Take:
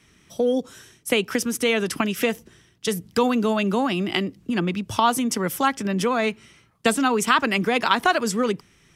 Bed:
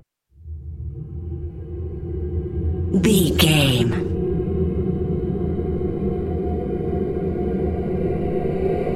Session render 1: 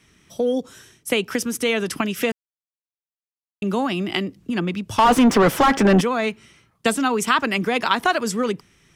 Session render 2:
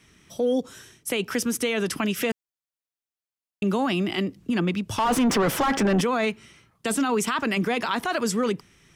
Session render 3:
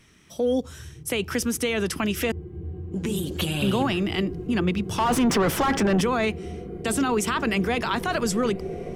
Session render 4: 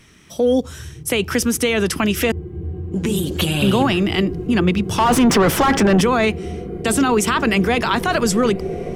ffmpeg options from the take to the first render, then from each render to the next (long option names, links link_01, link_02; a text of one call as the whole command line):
ffmpeg -i in.wav -filter_complex "[0:a]asettb=1/sr,asplit=3[link_01][link_02][link_03];[link_01]atrim=end=4.984[link_04];[link_02]atrim=start=4.98:end=6.01,asetpts=PTS-STARTPTS,afade=type=in:duration=0.004:curve=qsin,afade=type=out:start_time=1.026:duration=0.004:curve=qsin,asplit=2[link_05][link_06];[link_06]highpass=frequency=720:poles=1,volume=32dB,asoftclip=type=tanh:threshold=-4.5dB[link_07];[link_05][link_07]amix=inputs=2:normalize=0,lowpass=frequency=1000:poles=1,volume=-6dB[link_08];[link_03]atrim=start=6.006[link_09];[link_04][link_08]acrossfade=duration=0.004:curve1=hsin:curve2=qsin[link_10];[link_10][link_09]acrossfade=duration=0.004:curve1=qsin:curve2=hsin,asplit=3[link_11][link_12][link_13];[link_11]atrim=end=2.32,asetpts=PTS-STARTPTS,afade=type=out:start_time=2.316:duration=0.004:curve=hsin[link_14];[link_12]atrim=start=2.32:end=3.62,asetpts=PTS-STARTPTS,volume=0[link_15];[link_13]atrim=start=3.62,asetpts=PTS-STARTPTS,afade=type=in:duration=0.004:curve=hsin[link_16];[link_14][link_15][link_16]concat=n=3:v=0:a=1" out.wav
ffmpeg -i in.wav -af "alimiter=limit=-16dB:level=0:latency=1:release=13" out.wav
ffmpeg -i in.wav -i bed.wav -filter_complex "[1:a]volume=-11.5dB[link_01];[0:a][link_01]amix=inputs=2:normalize=0" out.wav
ffmpeg -i in.wav -af "volume=7dB" out.wav